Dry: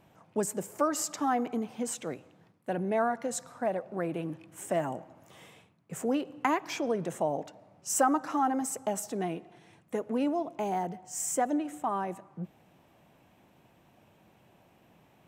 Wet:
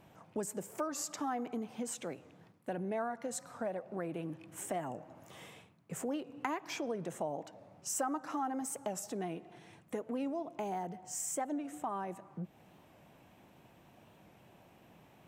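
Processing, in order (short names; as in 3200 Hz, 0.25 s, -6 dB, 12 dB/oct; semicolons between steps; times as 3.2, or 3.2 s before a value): compressor 2:1, threshold -42 dBFS, peak gain reduction 12 dB; record warp 45 rpm, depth 100 cents; gain +1 dB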